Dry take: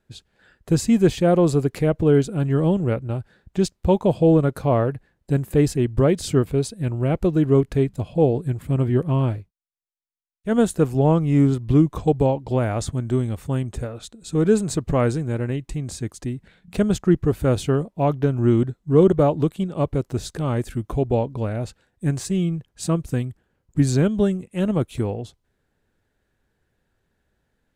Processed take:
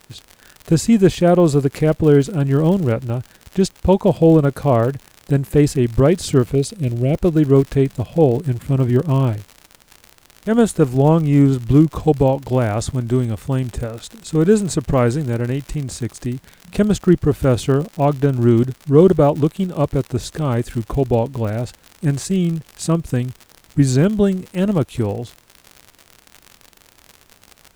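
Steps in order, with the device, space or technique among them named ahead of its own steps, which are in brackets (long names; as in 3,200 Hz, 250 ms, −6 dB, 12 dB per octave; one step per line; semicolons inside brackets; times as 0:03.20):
0:06.55–0:07.15: flat-topped bell 1,200 Hz −16 dB 1.3 octaves
vinyl LP (surface crackle 89 per second −30 dBFS; pink noise bed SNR 39 dB)
level +4 dB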